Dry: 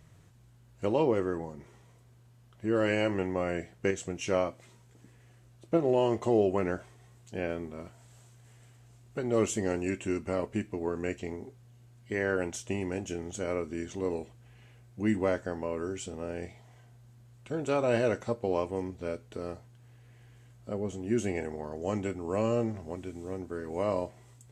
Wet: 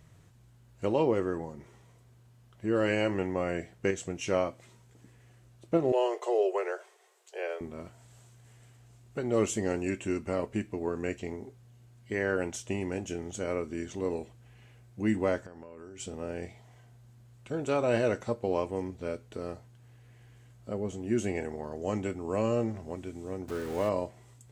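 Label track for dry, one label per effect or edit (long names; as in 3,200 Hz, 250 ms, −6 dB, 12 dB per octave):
5.920000	7.610000	Butterworth high-pass 370 Hz 96 dB per octave
15.390000	16.000000	downward compressor 10 to 1, threshold −42 dBFS
23.480000	23.890000	converter with a step at zero of −38 dBFS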